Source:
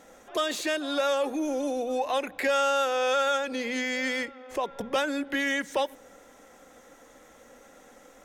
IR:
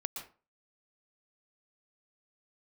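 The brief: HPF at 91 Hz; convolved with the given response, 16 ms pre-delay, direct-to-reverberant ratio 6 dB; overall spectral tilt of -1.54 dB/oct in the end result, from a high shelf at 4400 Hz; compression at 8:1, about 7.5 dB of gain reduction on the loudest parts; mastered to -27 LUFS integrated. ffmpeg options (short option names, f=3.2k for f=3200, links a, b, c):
-filter_complex "[0:a]highpass=91,highshelf=f=4.4k:g=6,acompressor=threshold=-29dB:ratio=8,asplit=2[a][b];[1:a]atrim=start_sample=2205,adelay=16[c];[b][c]afir=irnorm=-1:irlink=0,volume=-6.5dB[d];[a][d]amix=inputs=2:normalize=0,volume=4.5dB"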